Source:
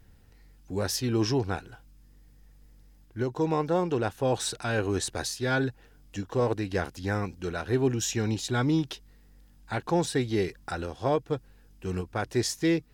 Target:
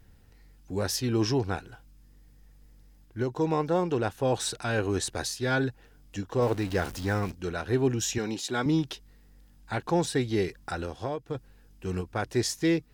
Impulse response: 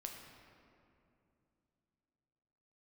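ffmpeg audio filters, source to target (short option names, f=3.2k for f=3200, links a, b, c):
-filter_complex "[0:a]asettb=1/sr,asplit=3[a][b][c];[a]atrim=end=6.424[d];[b]atrim=start=6.42:end=7.32,asetpts=PTS-STARTPTS,afade=t=in:d=0.004:c=qsin,afade=t=out:st=0.896:d=0.004:c=qsin,aeval=exprs='val(0)+0.5*0.0141*sgn(val(0))':c=same[e];[c]atrim=start=7.316[f];[d][e]acrossfade=d=0.004:c1=hsin:c2=qsin[g];[g][f]acrossfade=d=0.004:c1=qsin:c2=hsin,asettb=1/sr,asplit=3[h][i][j];[h]atrim=end=8.184[k];[i]atrim=start=8.18:end=8.66,asetpts=PTS-STARTPTS,afade=t=in:d=0.004:c=qsin,afade=t=out:st=0.476:d=0.004:c=qsin,highpass=230[l];[j]atrim=start=8.656[m];[k][l]acrossfade=d=0.004:c1=hsin:c2=qsin[n];[n][m]acrossfade=d=0.004:c1=qsin:c2=hsin,asettb=1/sr,asplit=3[o][p][q];[o]atrim=end=10.954[r];[p]atrim=start=10.95:end=11.35,asetpts=PTS-STARTPTS,afade=t=in:d=0.004:c=qsin,afade=t=out:st=0.396:d=0.004:c=qsin,acompressor=threshold=-30dB:ratio=4[s];[q]atrim=start=11.346[t];[r][s]acrossfade=d=0.004:c1=hsin:c2=qsin[u];[u][t]acrossfade=d=0.004:c1=qsin:c2=hsin"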